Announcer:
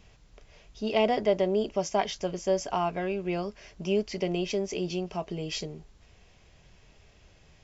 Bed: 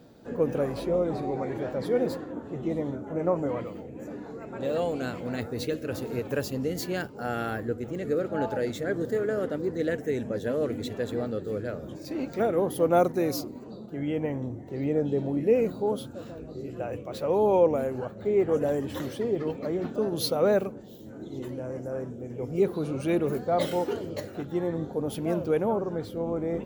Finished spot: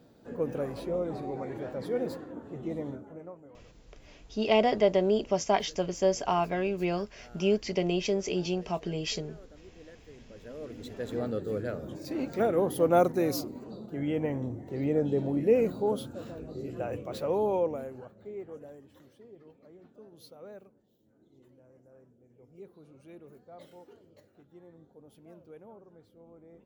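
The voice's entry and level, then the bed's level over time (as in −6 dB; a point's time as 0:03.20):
3.55 s, +1.0 dB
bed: 0:02.94 −5.5 dB
0:03.39 −23.5 dB
0:10.13 −23.5 dB
0:11.26 −1 dB
0:17.12 −1 dB
0:18.95 −24.5 dB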